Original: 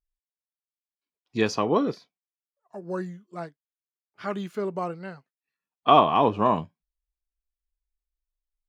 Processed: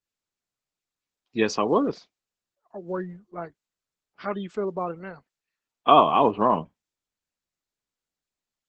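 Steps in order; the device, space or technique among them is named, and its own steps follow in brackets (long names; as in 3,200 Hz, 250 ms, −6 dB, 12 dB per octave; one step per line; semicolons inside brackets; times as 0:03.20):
noise-suppressed video call (high-pass filter 170 Hz 12 dB per octave; gate on every frequency bin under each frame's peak −30 dB strong; level +1.5 dB; Opus 12 kbit/s 48,000 Hz)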